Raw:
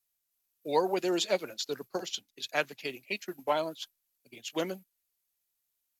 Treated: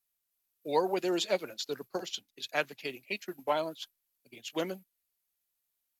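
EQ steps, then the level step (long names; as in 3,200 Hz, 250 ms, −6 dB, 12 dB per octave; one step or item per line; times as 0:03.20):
parametric band 6,400 Hz −2.5 dB
−1.0 dB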